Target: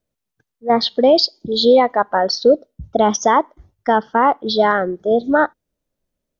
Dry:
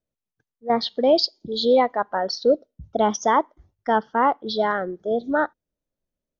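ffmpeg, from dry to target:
-af "alimiter=limit=0.282:level=0:latency=1:release=77,volume=2.37"

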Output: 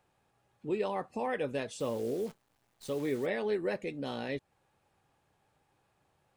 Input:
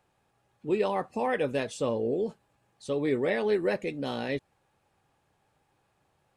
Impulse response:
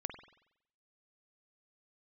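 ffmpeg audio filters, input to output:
-filter_complex "[0:a]asplit=2[s0][s1];[s1]acompressor=threshold=0.0126:ratio=6,volume=0.841[s2];[s0][s2]amix=inputs=2:normalize=0,asplit=3[s3][s4][s5];[s3]afade=t=out:st=1.79:d=0.02[s6];[s4]acrusher=bits=8:dc=4:mix=0:aa=0.000001,afade=t=in:st=1.79:d=0.02,afade=t=out:st=3.25:d=0.02[s7];[s5]afade=t=in:st=3.25:d=0.02[s8];[s6][s7][s8]amix=inputs=3:normalize=0,volume=0.447"

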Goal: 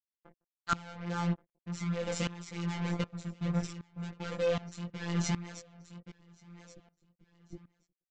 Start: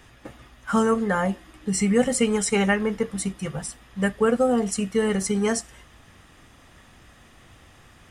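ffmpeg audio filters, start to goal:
-filter_complex "[0:a]afftfilt=real='re*gte(hypot(re,im),0.0158)':imag='im*gte(hypot(re,im),0.0158)':win_size=1024:overlap=0.75,equalizer=f=120:t=o:w=1.7:g=14,aecho=1:1:2.4:0.44,adynamicequalizer=threshold=0.00251:dfrequency=3600:dqfactor=3.8:tfrequency=3600:tqfactor=3.8:attack=5:release=100:ratio=0.375:range=3.5:mode=boostabove:tftype=bell,dynaudnorm=f=140:g=7:m=3.76,alimiter=limit=0.335:level=0:latency=1:release=77,acompressor=threshold=0.1:ratio=2.5,aresample=16000,acrusher=bits=3:mix=0:aa=0.5,aresample=44100,afftfilt=real='hypot(re,im)*cos(PI*b)':imag='0':win_size=1024:overlap=0.75,flanger=delay=16.5:depth=2.3:speed=1.6,asplit=2[s0][s1];[s1]aecho=0:1:1127|2254:0.126|0.0315[s2];[s0][s2]amix=inputs=2:normalize=0,aeval=exprs='val(0)*pow(10,-19*if(lt(mod(-1.3*n/s,1),2*abs(-1.3)/1000),1-mod(-1.3*n/s,1)/(2*abs(-1.3)/1000),(mod(-1.3*n/s,1)-2*abs(-1.3)/1000)/(1-2*abs(-1.3)/1000))/20)':c=same"

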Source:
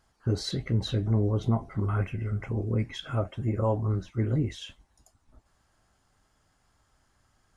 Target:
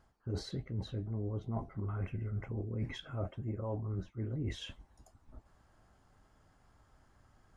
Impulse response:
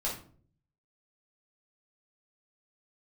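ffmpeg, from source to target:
-af "highshelf=f=2100:g=-11,areverse,acompressor=threshold=0.0126:ratio=16,areverse,volume=1.58"

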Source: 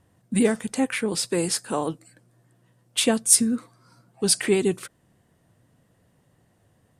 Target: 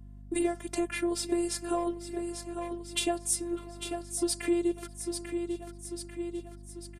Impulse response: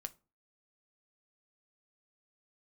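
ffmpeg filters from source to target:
-filter_complex "[0:a]agate=range=0.251:threshold=0.00158:ratio=16:detection=peak,equalizer=f=510:t=o:w=1.7:g=9,asplit=2[s0][s1];[s1]aecho=0:1:843|1686|2529|3372:0.126|0.0604|0.029|0.0139[s2];[s0][s2]amix=inputs=2:normalize=0,afftfilt=real='hypot(re,im)*cos(PI*b)':imag='0':win_size=512:overlap=0.75,acompressor=threshold=0.0158:ratio=3,asplit=2[s3][s4];[s4]adelay=598,lowpass=f=2600:p=1,volume=0.0794,asplit=2[s5][s6];[s6]adelay=598,lowpass=f=2600:p=1,volume=0.43,asplit=2[s7][s8];[s8]adelay=598,lowpass=f=2600:p=1,volume=0.43[s9];[s5][s7][s9]amix=inputs=3:normalize=0[s10];[s3][s10]amix=inputs=2:normalize=0,aeval=exprs='val(0)+0.00282*(sin(2*PI*50*n/s)+sin(2*PI*2*50*n/s)/2+sin(2*PI*3*50*n/s)/3+sin(2*PI*4*50*n/s)/4+sin(2*PI*5*50*n/s)/5)':c=same,volume=1.78"

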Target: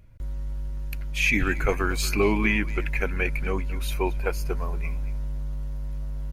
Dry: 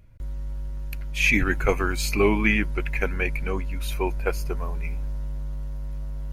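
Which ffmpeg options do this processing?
-filter_complex "[0:a]asplit=2[s0][s1];[s1]alimiter=limit=0.2:level=0:latency=1:release=142,volume=1.33[s2];[s0][s2]amix=inputs=2:normalize=0,asplit=2[s3][s4];[s4]adelay=230,highpass=300,lowpass=3400,asoftclip=type=hard:threshold=0.237,volume=0.178[s5];[s3][s5]amix=inputs=2:normalize=0,volume=0.447"

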